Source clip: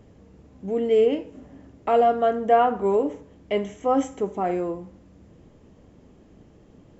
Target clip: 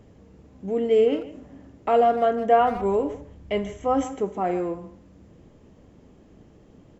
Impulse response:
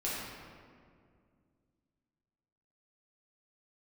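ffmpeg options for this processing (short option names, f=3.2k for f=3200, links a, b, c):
-filter_complex "[0:a]asplit=2[a][b];[b]adelay=150,highpass=300,lowpass=3.4k,asoftclip=type=hard:threshold=-15.5dB,volume=-14dB[c];[a][c]amix=inputs=2:normalize=0,asplit=3[d][e][f];[d]afade=t=out:st=2.59:d=0.02[g];[e]asubboost=boost=4:cutoff=140,afade=t=in:st=2.59:d=0.02,afade=t=out:st=4.03:d=0.02[h];[f]afade=t=in:st=4.03:d=0.02[i];[g][h][i]amix=inputs=3:normalize=0"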